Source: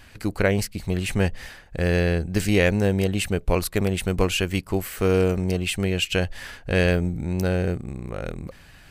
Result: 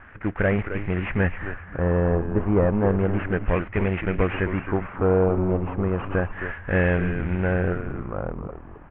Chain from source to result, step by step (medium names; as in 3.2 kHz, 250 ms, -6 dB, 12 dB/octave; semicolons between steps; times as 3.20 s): CVSD coder 16 kbps; LFO low-pass sine 0.32 Hz 980–2100 Hz; frequency-shifting echo 264 ms, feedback 30%, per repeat -100 Hz, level -9 dB